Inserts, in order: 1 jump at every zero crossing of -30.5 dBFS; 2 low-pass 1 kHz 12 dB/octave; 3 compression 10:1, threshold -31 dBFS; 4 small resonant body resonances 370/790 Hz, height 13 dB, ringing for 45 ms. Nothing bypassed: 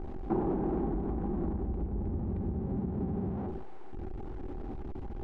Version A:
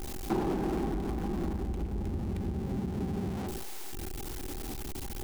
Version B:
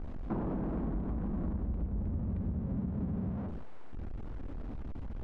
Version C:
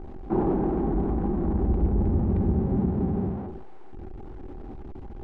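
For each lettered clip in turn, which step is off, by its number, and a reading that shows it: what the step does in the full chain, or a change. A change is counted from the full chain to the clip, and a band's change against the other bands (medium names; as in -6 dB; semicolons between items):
2, 1 kHz band +1.5 dB; 4, 125 Hz band +6.5 dB; 3, mean gain reduction 5.0 dB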